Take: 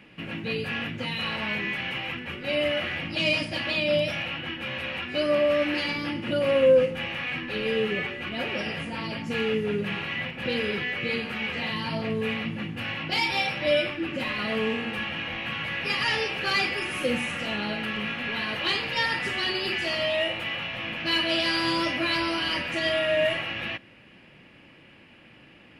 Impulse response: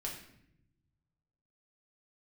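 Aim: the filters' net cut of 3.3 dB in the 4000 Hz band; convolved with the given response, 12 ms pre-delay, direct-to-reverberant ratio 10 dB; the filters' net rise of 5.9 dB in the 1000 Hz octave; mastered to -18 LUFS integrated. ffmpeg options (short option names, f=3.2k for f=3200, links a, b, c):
-filter_complex "[0:a]equalizer=f=1k:t=o:g=7.5,equalizer=f=4k:t=o:g=-6,asplit=2[a][b];[1:a]atrim=start_sample=2205,adelay=12[c];[b][c]afir=irnorm=-1:irlink=0,volume=-10dB[d];[a][d]amix=inputs=2:normalize=0,volume=7.5dB"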